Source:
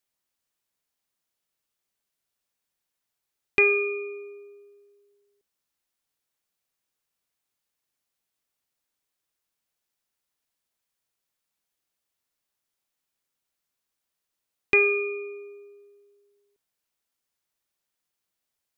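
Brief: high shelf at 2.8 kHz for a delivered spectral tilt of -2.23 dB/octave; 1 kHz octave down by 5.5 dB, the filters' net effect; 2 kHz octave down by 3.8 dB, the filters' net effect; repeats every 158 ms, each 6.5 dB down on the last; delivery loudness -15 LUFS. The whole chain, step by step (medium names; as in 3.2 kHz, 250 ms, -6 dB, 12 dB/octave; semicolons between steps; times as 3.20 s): peaking EQ 1 kHz -5.5 dB; peaking EQ 2 kHz -8 dB; treble shelf 2.8 kHz +6.5 dB; feedback delay 158 ms, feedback 47%, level -6.5 dB; trim +10.5 dB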